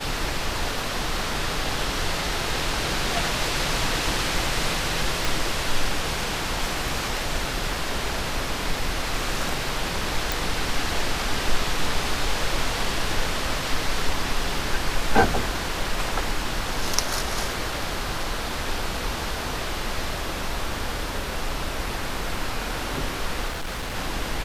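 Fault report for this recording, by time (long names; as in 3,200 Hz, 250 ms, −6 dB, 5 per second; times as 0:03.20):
0:05.25: click
0:10.32: click
0:23.48–0:23.96: clipping −26.5 dBFS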